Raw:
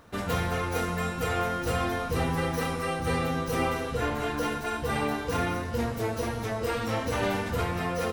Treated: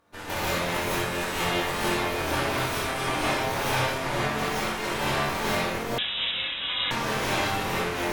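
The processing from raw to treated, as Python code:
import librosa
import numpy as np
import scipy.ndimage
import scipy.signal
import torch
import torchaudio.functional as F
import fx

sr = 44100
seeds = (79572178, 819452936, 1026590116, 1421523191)

y = fx.low_shelf(x, sr, hz=130.0, db=-10.5)
y = fx.cheby_harmonics(y, sr, harmonics=(2, 3, 5, 6), levels_db=(-10, -7, -33, -20), full_scale_db=-14.0)
y = fx.room_early_taps(y, sr, ms=(23, 64), db=(-4.0, -4.0))
y = fx.rev_gated(y, sr, seeds[0], gate_ms=200, shape='rising', drr_db=-7.0)
y = fx.freq_invert(y, sr, carrier_hz=3800, at=(5.98, 6.91))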